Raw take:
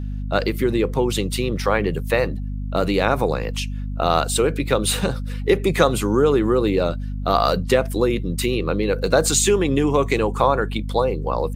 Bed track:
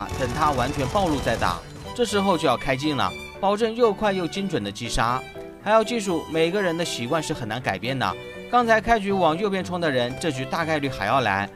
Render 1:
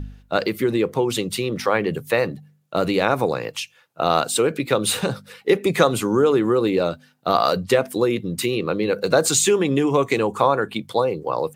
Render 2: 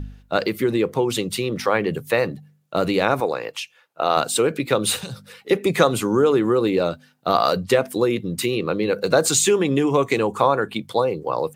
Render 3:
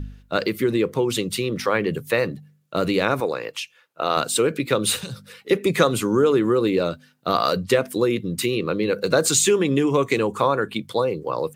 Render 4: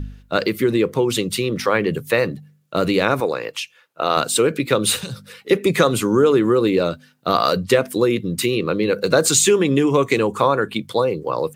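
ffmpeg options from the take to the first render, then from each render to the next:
-af "bandreject=f=50:t=h:w=4,bandreject=f=100:t=h:w=4,bandreject=f=150:t=h:w=4,bandreject=f=200:t=h:w=4,bandreject=f=250:t=h:w=4"
-filter_complex "[0:a]asettb=1/sr,asplit=3[a][b][c];[a]atrim=end=3.204[d];[b]atrim=start=3.2:end=4.17,asetpts=PTS-STARTPTS,afade=t=in:d=0.004:c=qsin,afade=t=out:st=0.966:d=0.004:c=qsin,bass=f=250:g=-12,treble=f=4k:g=-4[e];[c]atrim=start=4.166[f];[d][e]acrossfade=d=0.004:c1=hsin:c2=qsin[g];[g][f]acrossfade=d=0.004:c1=qsin:c2=hsin,asettb=1/sr,asplit=3[h][i][j];[h]atrim=end=4.964[k];[i]atrim=start=4.96:end=5.51,asetpts=PTS-STARTPTS,afade=t=in:d=0.004:c=qsin,afade=t=out:st=0.546:d=0.004:c=qsin,acrossover=split=130|3000[l][m][n];[m]acompressor=threshold=-40dB:ratio=3:attack=3.2:release=140:knee=2.83:detection=peak[o];[l][o][n]amix=inputs=3:normalize=0[p];[j]atrim=start=5.506[q];[k][p]acrossfade=d=0.004:c1=hsin:c2=qsin[r];[r][q]acrossfade=d=0.004:c1=qsin:c2=hsin"
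-af "equalizer=f=770:w=2.5:g=-6.5"
-af "volume=3dB,alimiter=limit=-2dB:level=0:latency=1"

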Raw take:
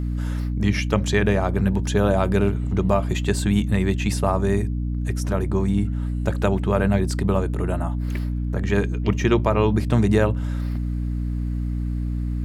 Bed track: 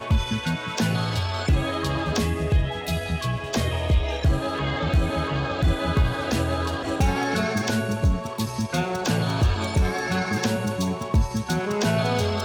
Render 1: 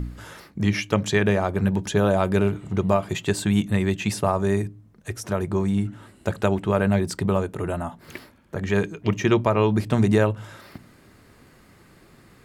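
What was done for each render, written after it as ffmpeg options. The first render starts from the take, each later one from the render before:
-af "bandreject=f=60:t=h:w=4,bandreject=f=120:t=h:w=4,bandreject=f=180:t=h:w=4,bandreject=f=240:t=h:w=4,bandreject=f=300:t=h:w=4"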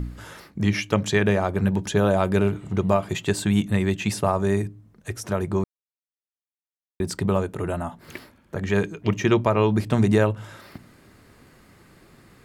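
-filter_complex "[0:a]asplit=3[a][b][c];[a]atrim=end=5.64,asetpts=PTS-STARTPTS,afade=t=out:st=5.636:d=0.004:c=hsin[d];[b]atrim=start=5.64:end=7,asetpts=PTS-STARTPTS,volume=0[e];[c]atrim=start=7,asetpts=PTS-STARTPTS,afade=t=in:d=0.004:c=hsin[f];[d][e][f]concat=n=3:v=0:a=1"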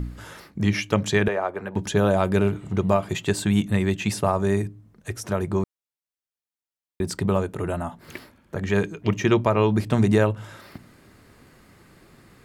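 -filter_complex "[0:a]asettb=1/sr,asplit=3[a][b][c];[a]atrim=end=1.284[d];[b]atrim=start=1.28:end=1.76,asetpts=PTS-STARTPTS,afade=t=in:d=0.004:c=qsin,afade=t=out:st=0.476:d=0.004:c=qsin,acrossover=split=360 2400:gain=0.1 1 0.224[e][f][g];[e][f][g]amix=inputs=3:normalize=0[h];[c]atrim=start=1.756[i];[d][h]acrossfade=d=0.004:c1=hsin:c2=qsin[j];[j][i]acrossfade=d=0.004:c1=qsin:c2=hsin"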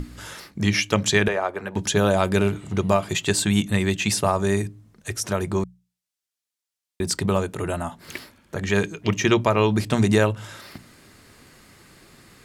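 -af "equalizer=f=6.5k:w=0.33:g=8.5,bandreject=f=60:t=h:w=6,bandreject=f=120:t=h:w=6,bandreject=f=180:t=h:w=6"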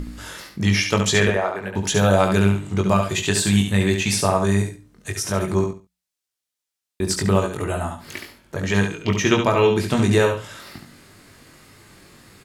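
-filter_complex "[0:a]asplit=2[a][b];[b]adelay=21,volume=-5dB[c];[a][c]amix=inputs=2:normalize=0,aecho=1:1:70|140|210:0.501|0.105|0.0221"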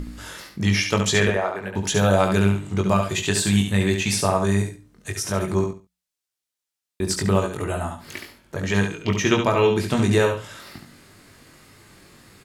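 -af "volume=-1.5dB"

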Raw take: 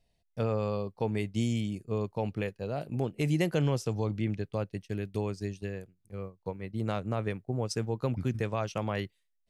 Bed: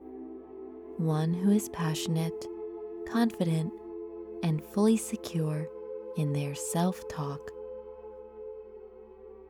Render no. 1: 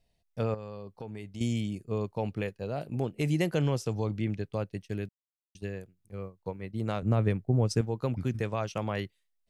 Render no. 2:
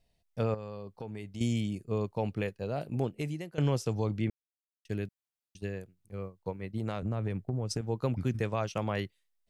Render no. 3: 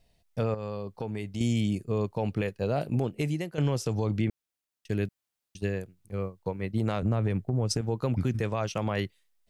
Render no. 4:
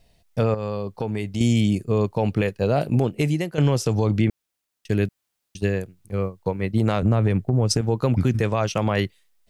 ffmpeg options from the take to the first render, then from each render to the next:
-filter_complex "[0:a]asettb=1/sr,asplit=3[a][b][c];[a]atrim=end=0.544[d];[b]atrim=start=0.54:end=1.41,asetpts=PTS-STARTPTS,afade=t=in:d=0.004:c=qsin,afade=t=out:st=0.866:d=0.004:c=qsin,acompressor=threshold=-41dB:ratio=2.5:attack=3.2:release=140:knee=1:detection=peak[e];[c]atrim=start=1.406[f];[d][e]acrossfade=d=0.004:c1=hsin:c2=qsin[g];[g][f]acrossfade=d=0.004:c1=qsin:c2=hsin,asettb=1/sr,asplit=3[h][i][j];[h]atrim=end=7.024[k];[i]atrim=start=7.02:end=7.81,asetpts=PTS-STARTPTS,afade=t=in:d=0.004:c=qsin,afade=t=out:st=0.786:d=0.004:c=qsin,lowshelf=f=320:g=9.5[l];[j]atrim=start=7.806[m];[k][l]acrossfade=d=0.004:c1=hsin:c2=qsin[n];[n][m]acrossfade=d=0.004:c1=qsin:c2=hsin,asplit=3[o][p][q];[o]atrim=end=5.09,asetpts=PTS-STARTPTS,afade=t=out:st=5.086:d=0.004:c=hsin[r];[p]atrim=start=5.09:end=5.55,asetpts=PTS-STARTPTS,volume=0[s];[q]atrim=start=5.55,asetpts=PTS-STARTPTS,afade=t=in:d=0.004:c=hsin[t];[r][s][t]concat=n=3:v=0:a=1"
-filter_complex "[0:a]asettb=1/sr,asplit=3[a][b][c];[a]atrim=end=6.774[d];[b]atrim=start=6.77:end=7.86,asetpts=PTS-STARTPTS,afade=t=in:d=0.004:c=qsin,afade=t=out:st=1.086:d=0.004:c=qsin,acompressor=threshold=-28dB:ratio=6:attack=3.2:release=140:knee=1:detection=peak[e];[c]atrim=start=7.856[f];[d][e]acrossfade=d=0.004:c1=hsin:c2=qsin[g];[g][f]acrossfade=d=0.004:c1=qsin:c2=hsin,asplit=4[h][i][j][k];[h]atrim=end=3.58,asetpts=PTS-STARTPTS,afade=t=out:st=3.07:d=0.51:c=qua:silence=0.149624[l];[i]atrim=start=3.58:end=4.3,asetpts=PTS-STARTPTS,afade=t=in:d=0.004:c=hsin:silence=0.149624,afade=t=out:st=0.716:d=0.004:c=hsin[m];[j]atrim=start=4.3:end=4.85,asetpts=PTS-STARTPTS,volume=0[n];[k]atrim=start=4.85,asetpts=PTS-STARTPTS,afade=t=in:d=0.004:c=hsin[o];[l][m][n][o]concat=n=4:v=0:a=1"
-af "acontrast=72,alimiter=limit=-17.5dB:level=0:latency=1:release=113"
-af "volume=7.5dB"

